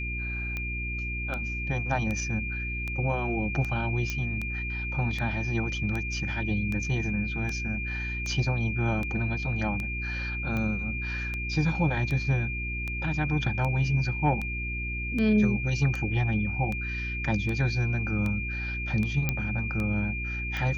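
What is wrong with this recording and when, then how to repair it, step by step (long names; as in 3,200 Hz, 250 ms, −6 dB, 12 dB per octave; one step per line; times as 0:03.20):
mains hum 60 Hz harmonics 6 −34 dBFS
scratch tick 78 rpm −20 dBFS
whistle 2,400 Hz −33 dBFS
0:04.10: click −16 dBFS
0:19.29: click −12 dBFS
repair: click removal
hum removal 60 Hz, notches 6
notch filter 2,400 Hz, Q 30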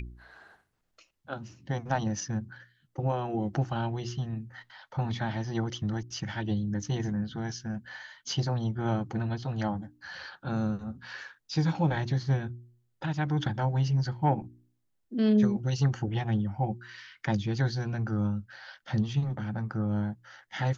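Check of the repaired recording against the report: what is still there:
none of them is left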